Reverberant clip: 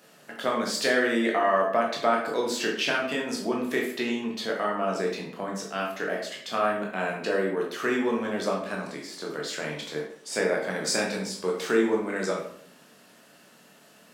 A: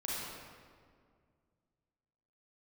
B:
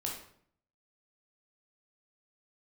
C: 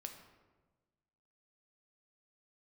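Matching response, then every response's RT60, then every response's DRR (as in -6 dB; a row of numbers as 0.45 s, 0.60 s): B; 2.0 s, 0.60 s, 1.3 s; -7.0 dB, -1.5 dB, 4.0 dB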